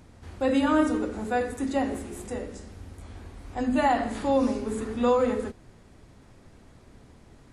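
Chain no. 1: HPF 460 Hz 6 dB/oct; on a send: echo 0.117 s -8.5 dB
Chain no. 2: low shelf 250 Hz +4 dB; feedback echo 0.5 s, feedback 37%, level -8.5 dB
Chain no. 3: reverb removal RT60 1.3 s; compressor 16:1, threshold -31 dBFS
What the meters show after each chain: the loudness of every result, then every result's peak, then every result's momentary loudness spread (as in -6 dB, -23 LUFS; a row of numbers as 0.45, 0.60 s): -29.0, -25.0, -38.0 LUFS; -13.0, -10.0, -21.0 dBFS; 14, 18, 22 LU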